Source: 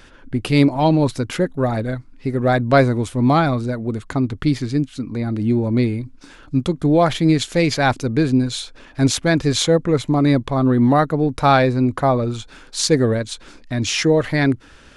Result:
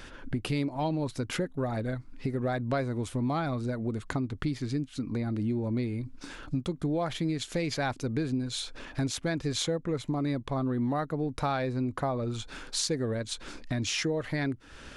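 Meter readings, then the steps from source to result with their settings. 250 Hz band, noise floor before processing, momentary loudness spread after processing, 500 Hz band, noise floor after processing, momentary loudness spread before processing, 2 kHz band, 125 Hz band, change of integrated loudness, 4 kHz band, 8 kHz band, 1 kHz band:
-13.0 dB, -46 dBFS, 6 LU, -14.0 dB, -50 dBFS, 10 LU, -13.0 dB, -12.5 dB, -13.5 dB, -10.5 dB, -10.0 dB, -14.5 dB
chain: compression 4:1, threshold -30 dBFS, peak gain reduction 17.5 dB

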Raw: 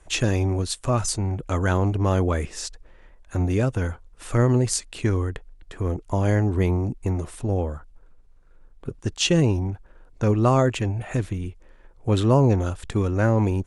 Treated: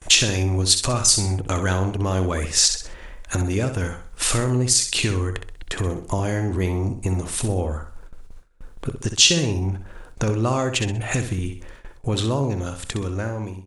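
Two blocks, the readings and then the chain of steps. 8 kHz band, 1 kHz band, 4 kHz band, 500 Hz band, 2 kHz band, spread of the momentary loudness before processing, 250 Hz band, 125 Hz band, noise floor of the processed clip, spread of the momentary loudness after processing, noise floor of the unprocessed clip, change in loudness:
+12.0 dB, -1.0 dB, +11.5 dB, -2.0 dB, +5.0 dB, 13 LU, -2.0 dB, -1.5 dB, -43 dBFS, 13 LU, -52 dBFS, +2.0 dB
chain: fade out at the end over 2.08 s; compression 3:1, threshold -36 dBFS, peak gain reduction 16 dB; treble shelf 2.4 kHz +8.5 dB; on a send: feedback delay 64 ms, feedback 37%, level -8.5 dB; on the sum: dynamic bell 4.4 kHz, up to +5 dB, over -45 dBFS, Q 0.79; gate with hold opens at -42 dBFS; loudness maximiser +12 dB; trim -1 dB

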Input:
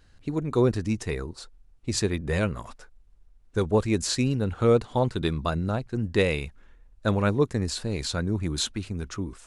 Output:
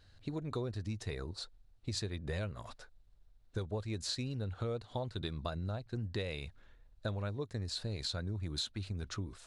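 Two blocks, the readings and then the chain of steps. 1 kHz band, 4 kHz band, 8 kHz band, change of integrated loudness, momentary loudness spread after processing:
-14.5 dB, -7.5 dB, -13.5 dB, -13.0 dB, 7 LU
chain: fifteen-band graphic EQ 100 Hz +9 dB, 630 Hz +6 dB, 1.6 kHz +3 dB, 4 kHz +10 dB; compression 6:1, threshold -27 dBFS, peak gain reduction 14 dB; trim -8 dB

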